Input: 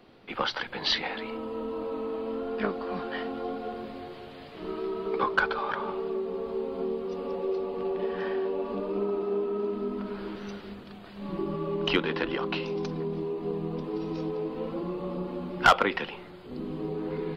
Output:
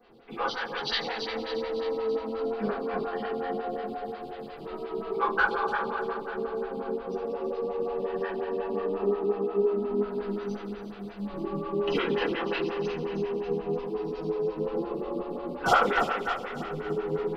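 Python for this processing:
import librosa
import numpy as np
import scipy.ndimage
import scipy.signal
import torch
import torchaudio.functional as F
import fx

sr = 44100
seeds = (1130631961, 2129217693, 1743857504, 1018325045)

y = fx.vibrato(x, sr, rate_hz=14.0, depth_cents=10.0)
y = fx.echo_feedback(y, sr, ms=296, feedback_pct=52, wet_db=-7.0)
y = fx.rev_double_slope(y, sr, seeds[0], early_s=0.46, late_s=4.3, knee_db=-21, drr_db=-9.5)
y = fx.stagger_phaser(y, sr, hz=5.6)
y = F.gain(torch.from_numpy(y), -7.5).numpy()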